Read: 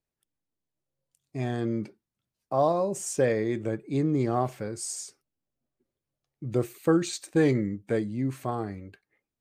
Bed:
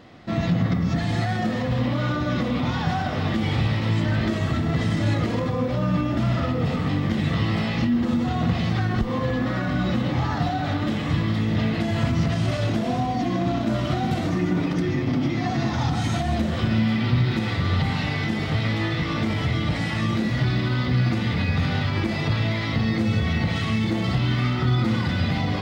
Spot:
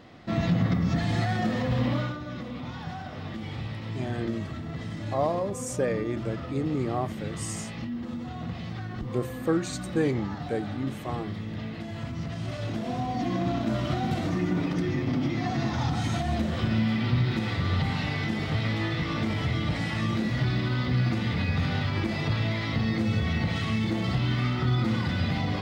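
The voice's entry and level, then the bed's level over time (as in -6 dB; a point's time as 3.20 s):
2.60 s, -3.0 dB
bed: 1.97 s -2.5 dB
2.19 s -12.5 dB
12.13 s -12.5 dB
13.29 s -4 dB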